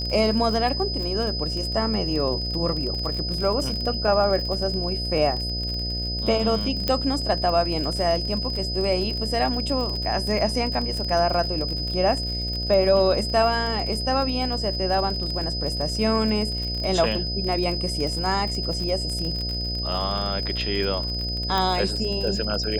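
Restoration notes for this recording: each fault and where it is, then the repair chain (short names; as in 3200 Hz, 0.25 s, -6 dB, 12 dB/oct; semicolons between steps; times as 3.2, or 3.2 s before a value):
buzz 60 Hz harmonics 12 -30 dBFS
crackle 42/s -28 dBFS
tone 5000 Hz -28 dBFS
6.88 pop -9 dBFS
21.58 pop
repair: de-click; de-hum 60 Hz, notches 12; notch 5000 Hz, Q 30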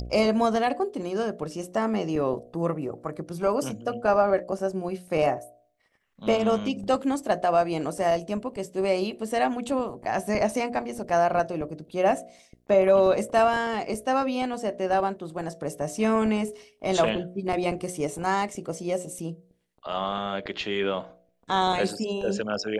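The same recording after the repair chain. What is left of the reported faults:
none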